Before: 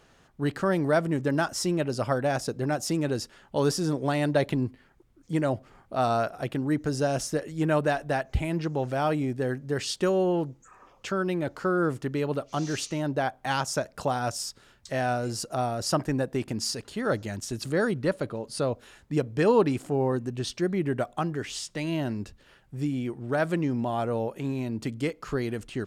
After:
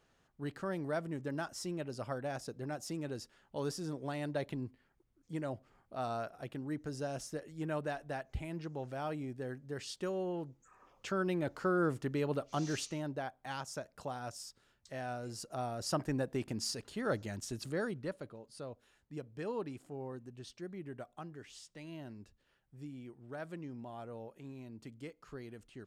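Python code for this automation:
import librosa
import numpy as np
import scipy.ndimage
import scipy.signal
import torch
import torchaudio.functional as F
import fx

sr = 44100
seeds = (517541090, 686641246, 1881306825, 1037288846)

y = fx.gain(x, sr, db=fx.line((10.39, -13.0), (11.2, -6.0), (12.72, -6.0), (13.31, -14.0), (15.05, -14.0), (16.12, -7.5), (17.48, -7.5), (18.48, -18.0)))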